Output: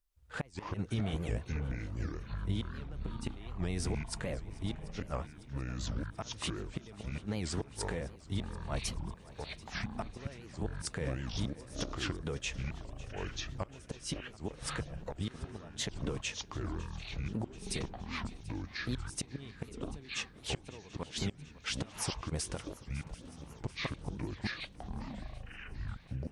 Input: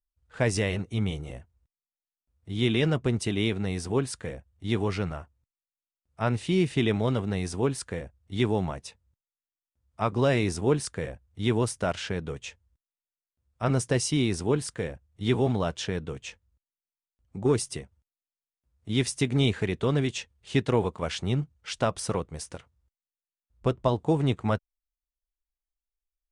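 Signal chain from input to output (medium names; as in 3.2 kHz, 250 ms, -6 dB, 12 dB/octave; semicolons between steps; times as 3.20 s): inverted gate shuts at -17 dBFS, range -32 dB; compression, threshold -35 dBFS, peak gain reduction 11.5 dB; peak limiter -30.5 dBFS, peak gain reduction 9.5 dB; ever faster or slower copies 118 ms, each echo -7 st, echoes 3; shuffle delay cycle 736 ms, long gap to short 3:1, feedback 62%, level -19 dB; warped record 78 rpm, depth 250 cents; trim +5 dB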